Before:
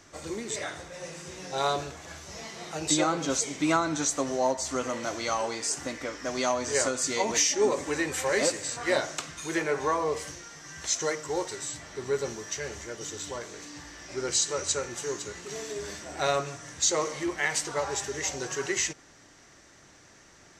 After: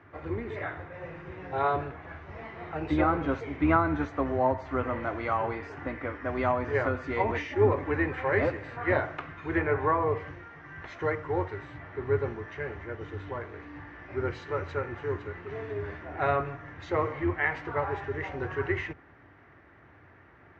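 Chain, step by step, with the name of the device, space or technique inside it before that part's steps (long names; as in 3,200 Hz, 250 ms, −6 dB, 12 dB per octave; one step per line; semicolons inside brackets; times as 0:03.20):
sub-octave bass pedal (sub-octave generator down 2 octaves, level −5 dB; loudspeaker in its box 70–2,100 Hz, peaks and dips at 95 Hz +9 dB, 200 Hz −6 dB, 560 Hz −4 dB)
level +2 dB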